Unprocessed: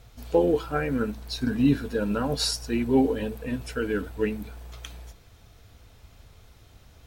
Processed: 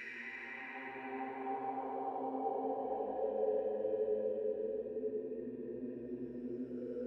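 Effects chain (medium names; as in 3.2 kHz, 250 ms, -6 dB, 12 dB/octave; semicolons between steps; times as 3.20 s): wah-wah 0.5 Hz 350–2600 Hz, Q 10; Paulstretch 7.8×, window 0.50 s, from 2.74 s; trim +4.5 dB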